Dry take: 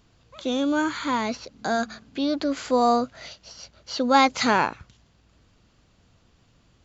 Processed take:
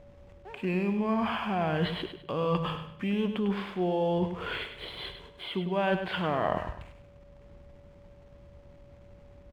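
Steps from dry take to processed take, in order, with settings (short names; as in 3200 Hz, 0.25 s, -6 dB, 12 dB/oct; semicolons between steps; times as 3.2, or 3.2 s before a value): LPF 4500 Hz 24 dB/oct; reverse; compressor 6:1, threshold -34 dBFS, peak gain reduction 20 dB; reverse; wide varispeed 0.719×; backlash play -60 dBFS; whine 570 Hz -60 dBFS; on a send: feedback echo 0.101 s, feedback 33%, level -8.5 dB; on the sum: gain +7 dB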